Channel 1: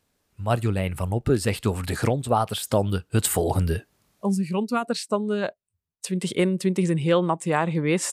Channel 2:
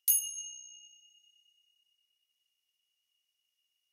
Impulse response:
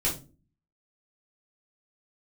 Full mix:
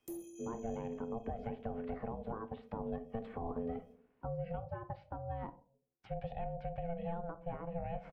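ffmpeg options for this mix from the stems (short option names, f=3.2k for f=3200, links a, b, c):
-filter_complex "[0:a]lowpass=f=2.2k:w=0.5412,lowpass=f=2.2k:w=1.3066,aecho=1:1:2.7:0.33,alimiter=limit=-19.5dB:level=0:latency=1:release=245,volume=-6.5dB,asplit=2[a][b];[b]volume=-18dB[c];[1:a]aeval=exprs='if(lt(val(0),0),0.708*val(0),val(0))':c=same,volume=-3dB,asplit=2[d][e];[e]volume=-6.5dB[f];[2:a]atrim=start_sample=2205[g];[c][f]amix=inputs=2:normalize=0[h];[h][g]afir=irnorm=-1:irlink=0[i];[a][d][i]amix=inputs=3:normalize=0,acrossover=split=110|730[j][k][l];[j]acompressor=threshold=-44dB:ratio=4[m];[k]acompressor=threshold=-35dB:ratio=4[n];[l]acompressor=threshold=-57dB:ratio=4[o];[m][n][o]amix=inputs=3:normalize=0,aeval=exprs='val(0)*sin(2*PI*340*n/s)':c=same"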